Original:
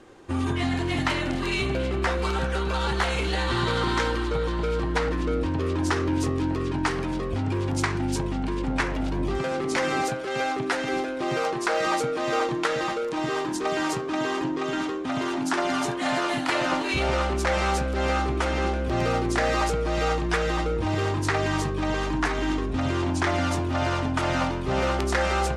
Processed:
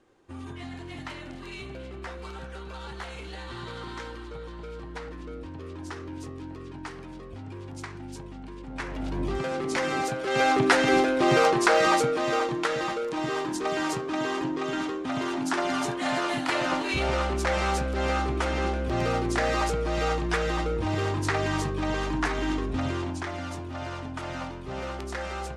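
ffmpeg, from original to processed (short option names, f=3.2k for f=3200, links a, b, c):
-af "volume=6dB,afade=t=in:st=8.68:d=0.54:silence=0.281838,afade=t=in:st=10.1:d=0.47:silence=0.375837,afade=t=out:st=11.41:d=1.03:silence=0.398107,afade=t=out:st=22.76:d=0.51:silence=0.398107"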